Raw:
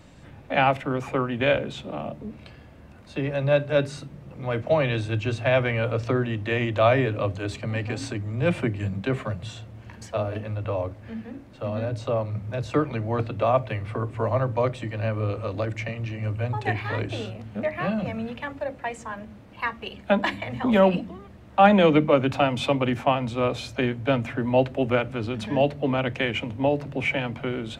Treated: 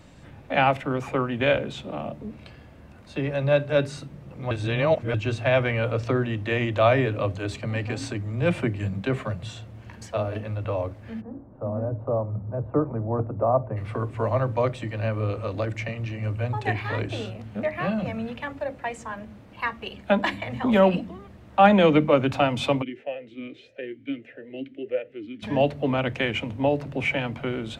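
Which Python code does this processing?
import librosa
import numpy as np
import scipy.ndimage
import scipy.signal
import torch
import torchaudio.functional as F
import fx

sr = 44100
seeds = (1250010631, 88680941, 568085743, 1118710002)

y = fx.lowpass(x, sr, hz=1100.0, slope=24, at=(11.2, 13.76), fade=0.02)
y = fx.vowel_sweep(y, sr, vowels='e-i', hz=1.6, at=(22.81, 25.42), fade=0.02)
y = fx.edit(y, sr, fx.reverse_span(start_s=4.51, length_s=0.63), tone=tone)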